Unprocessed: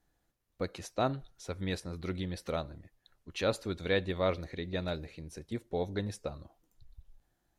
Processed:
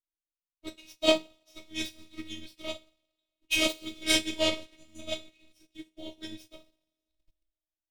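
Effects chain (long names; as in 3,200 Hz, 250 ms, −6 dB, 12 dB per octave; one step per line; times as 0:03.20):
stylus tracing distortion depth 0.17 ms
time-frequency box erased 0:04.57–0:04.79, 280–6,100 Hz
coupled-rooms reverb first 0.35 s, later 2.3 s, from −17 dB, DRR −9 dB
in parallel at −8.5 dB: centre clipping without the shift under −35 dBFS
on the sum: high shelf with overshoot 2,100 Hz +8 dB, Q 3
phases set to zero 328 Hz
wrong playback speed 25 fps video run at 24 fps
expander for the loud parts 2.5 to 1, over −37 dBFS
level −3 dB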